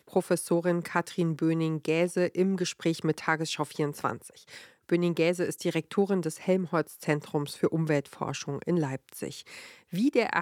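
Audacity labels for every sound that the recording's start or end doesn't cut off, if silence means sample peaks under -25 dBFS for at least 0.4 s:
4.920000	9.280000	sound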